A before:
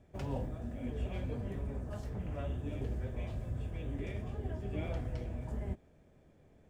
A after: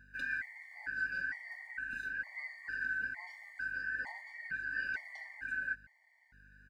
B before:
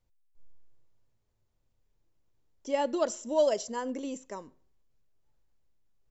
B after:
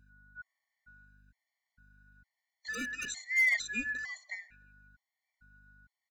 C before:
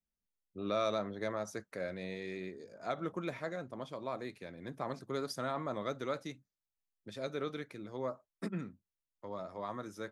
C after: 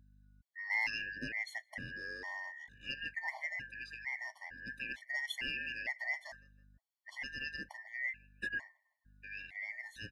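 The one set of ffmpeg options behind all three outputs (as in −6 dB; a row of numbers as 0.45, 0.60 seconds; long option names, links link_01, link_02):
-filter_complex "[0:a]afftfilt=real='real(if(lt(b,272),68*(eq(floor(b/68),0)*1+eq(floor(b/68),1)*0+eq(floor(b/68),2)*3+eq(floor(b/68),3)*2)+mod(b,68),b),0)':imag='imag(if(lt(b,272),68*(eq(floor(b/68),0)*1+eq(floor(b/68),1)*0+eq(floor(b/68),2)*3+eq(floor(b/68),3)*2)+mod(b,68),b),0)':win_size=2048:overlap=0.75,equalizer=frequency=250:width_type=o:width=0.33:gain=10,equalizer=frequency=800:width_type=o:width=0.33:gain=6,equalizer=frequency=4000:width_type=o:width=0.33:gain=8,volume=22.5dB,asoftclip=hard,volume=-22.5dB,aeval=exprs='val(0)+0.000794*(sin(2*PI*50*n/s)+sin(2*PI*2*50*n/s)/2+sin(2*PI*3*50*n/s)/3+sin(2*PI*4*50*n/s)/4+sin(2*PI*5*50*n/s)/5)':channel_layout=same,asplit=2[link_01][link_02];[link_02]adelay=161,lowpass=frequency=2200:poles=1,volume=-23dB,asplit=2[link_03][link_04];[link_04]adelay=161,lowpass=frequency=2200:poles=1,volume=0.43,asplit=2[link_05][link_06];[link_06]adelay=161,lowpass=frequency=2200:poles=1,volume=0.43[link_07];[link_03][link_05][link_07]amix=inputs=3:normalize=0[link_08];[link_01][link_08]amix=inputs=2:normalize=0,afftfilt=real='re*gt(sin(2*PI*1.1*pts/sr)*(1-2*mod(floor(b*sr/1024/590),2)),0)':imag='im*gt(sin(2*PI*1.1*pts/sr)*(1-2*mod(floor(b*sr/1024/590),2)),0)':win_size=1024:overlap=0.75"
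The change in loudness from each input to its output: +1.0, −1.5, 0.0 LU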